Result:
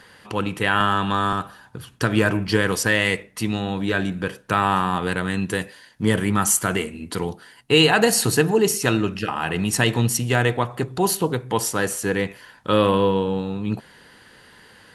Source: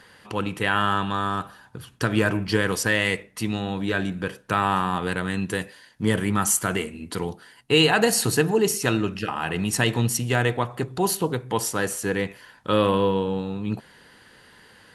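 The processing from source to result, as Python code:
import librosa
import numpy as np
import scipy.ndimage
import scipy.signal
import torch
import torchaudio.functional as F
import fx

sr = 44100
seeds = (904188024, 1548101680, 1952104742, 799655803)

y = fx.band_squash(x, sr, depth_pct=70, at=(0.8, 1.33))
y = y * librosa.db_to_amplitude(2.5)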